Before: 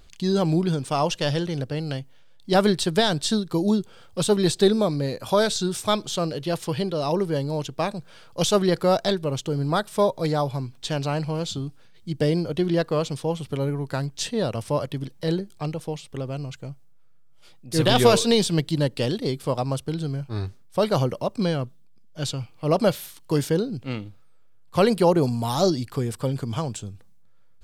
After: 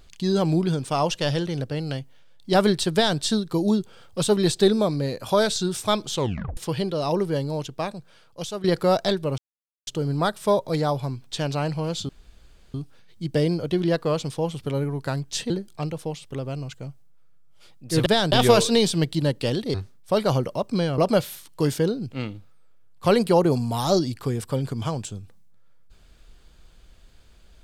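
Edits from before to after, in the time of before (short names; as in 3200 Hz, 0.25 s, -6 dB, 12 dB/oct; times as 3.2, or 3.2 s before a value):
2.93–3.19 copy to 17.88
6.14 tape stop 0.43 s
7.37–8.64 fade out, to -14.5 dB
9.38 insert silence 0.49 s
11.6 insert room tone 0.65 s
14.36–15.32 cut
19.3–20.4 cut
21.64–22.69 cut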